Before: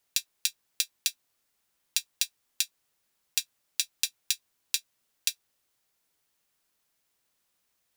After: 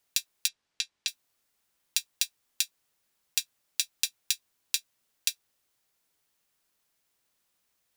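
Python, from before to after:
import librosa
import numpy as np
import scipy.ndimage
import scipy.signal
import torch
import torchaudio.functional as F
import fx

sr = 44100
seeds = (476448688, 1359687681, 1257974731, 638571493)

y = fx.lowpass(x, sr, hz=5300.0, slope=12, at=(0.48, 1.08))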